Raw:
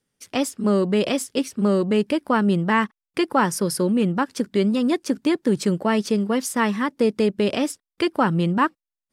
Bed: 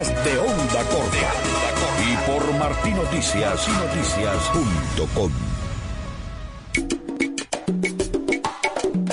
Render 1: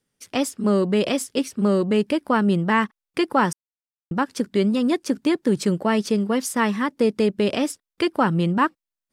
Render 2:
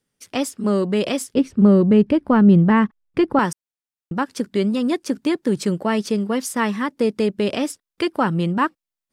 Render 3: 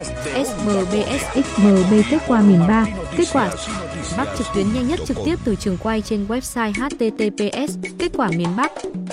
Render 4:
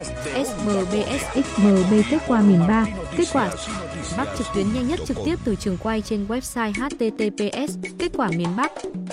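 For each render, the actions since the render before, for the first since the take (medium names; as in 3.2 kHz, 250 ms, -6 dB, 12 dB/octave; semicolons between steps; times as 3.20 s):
3.53–4.11 s: mute
1.34–3.39 s: RIAA curve playback
add bed -5 dB
trim -3 dB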